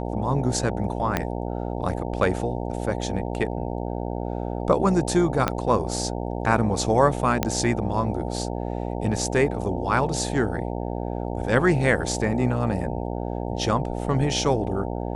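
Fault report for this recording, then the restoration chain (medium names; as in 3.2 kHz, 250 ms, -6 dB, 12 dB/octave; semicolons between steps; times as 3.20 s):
buzz 60 Hz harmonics 15 -29 dBFS
1.17 s: pop -8 dBFS
5.48 s: pop -7 dBFS
7.43 s: pop -6 dBFS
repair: de-click; de-hum 60 Hz, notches 15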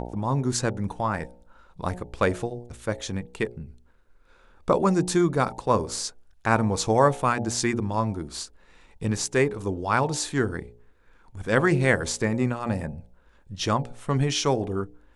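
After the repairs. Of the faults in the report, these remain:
1.17 s: pop
5.48 s: pop
7.43 s: pop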